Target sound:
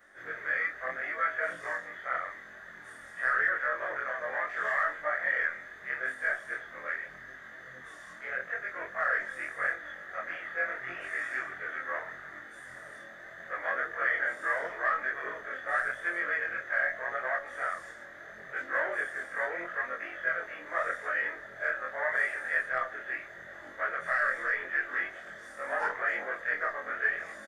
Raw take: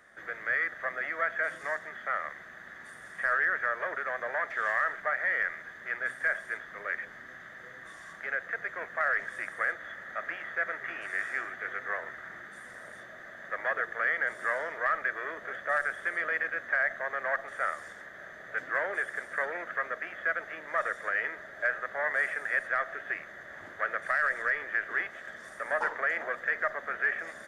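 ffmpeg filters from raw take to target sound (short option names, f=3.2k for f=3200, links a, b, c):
-filter_complex "[0:a]afftfilt=real='re':imag='-im':win_size=2048:overlap=0.75,asplit=2[a][b];[b]adelay=64,lowpass=f=1.2k:p=1,volume=-17dB,asplit=2[c][d];[d]adelay=64,lowpass=f=1.2k:p=1,volume=0.18[e];[a][c][e]amix=inputs=3:normalize=0,flanger=delay=19.5:depth=7.5:speed=0.8,volume=6.5dB"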